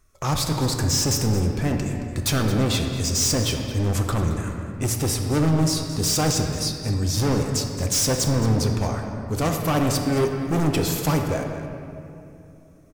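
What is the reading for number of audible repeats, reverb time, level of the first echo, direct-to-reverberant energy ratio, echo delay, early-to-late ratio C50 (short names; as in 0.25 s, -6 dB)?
1, 2.8 s, -13.5 dB, 2.5 dB, 0.221 s, 4.0 dB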